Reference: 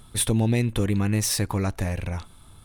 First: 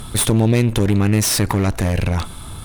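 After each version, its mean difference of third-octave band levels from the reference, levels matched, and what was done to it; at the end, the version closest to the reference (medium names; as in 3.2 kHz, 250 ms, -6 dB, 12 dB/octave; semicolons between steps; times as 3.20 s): 4.5 dB: in parallel at -1 dB: compressor with a negative ratio -33 dBFS, ratio -1; on the sum: one-sided clip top -29.5 dBFS; trim +7 dB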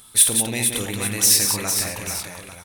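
10.0 dB: tilt EQ +3.5 dB/octave; multi-tap echo 49/105/179/455/564/845 ms -8.5/-16/-6/-7/-18.5/-13.5 dB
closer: first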